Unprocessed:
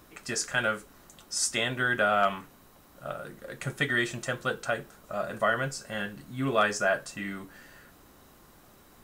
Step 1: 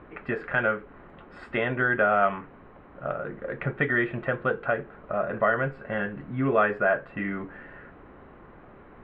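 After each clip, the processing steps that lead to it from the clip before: inverse Chebyshev low-pass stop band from 5.6 kHz, stop band 50 dB; peaking EQ 440 Hz +4 dB 0.62 oct; in parallel at +2 dB: compression, threshold -35 dBFS, peak gain reduction 15.5 dB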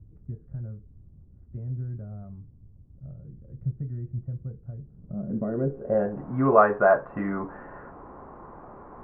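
low-pass sweep 100 Hz -> 990 Hz, 4.78–6.34 s; trim +2 dB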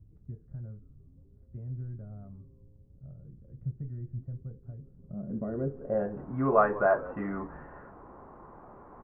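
frequency-shifting echo 176 ms, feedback 55%, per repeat -130 Hz, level -18 dB; trim -5.5 dB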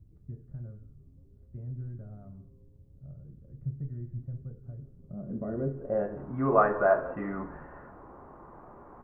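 reverberation, pre-delay 3 ms, DRR 9 dB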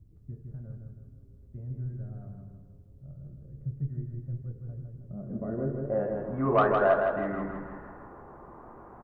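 saturation -12.5 dBFS, distortion -21 dB; feedback delay 160 ms, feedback 48%, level -4.5 dB

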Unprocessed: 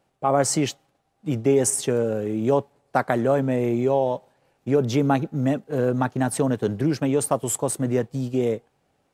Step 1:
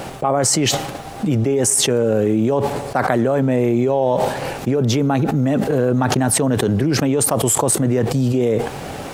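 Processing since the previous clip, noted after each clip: level flattener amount 100%; trim -1 dB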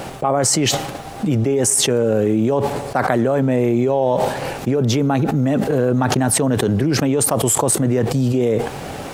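no audible change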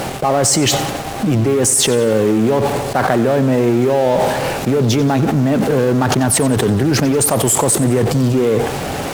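in parallel at -10 dB: fuzz box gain 39 dB, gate -34 dBFS; on the sum: bit-crushed delay 91 ms, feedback 55%, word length 6-bit, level -15 dB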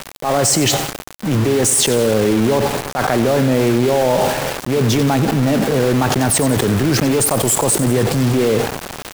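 small samples zeroed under -17 dBFS; transient shaper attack -7 dB, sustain 0 dB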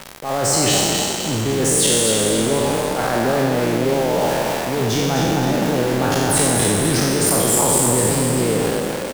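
spectral sustain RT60 1.87 s; on a send: frequency-shifting echo 255 ms, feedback 49%, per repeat +42 Hz, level -4.5 dB; on the sum: trim -7.5 dB

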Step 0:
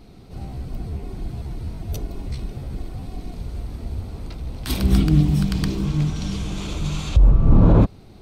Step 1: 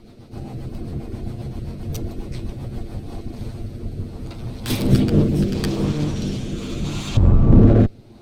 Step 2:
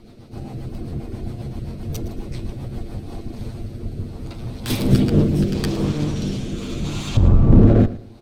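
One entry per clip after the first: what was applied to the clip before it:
comb filter that takes the minimum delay 8.7 ms; rotary cabinet horn 7.5 Hz, later 0.75 Hz, at 2.66 s; peaking EQ 310 Hz +3 dB 1.9 oct; trim +3.5 dB
feedback delay 113 ms, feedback 28%, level -16.5 dB

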